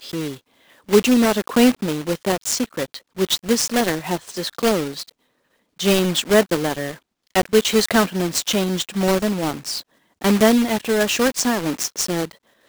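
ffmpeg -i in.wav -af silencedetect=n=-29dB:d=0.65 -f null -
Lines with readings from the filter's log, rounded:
silence_start: 5.03
silence_end: 5.80 | silence_duration: 0.77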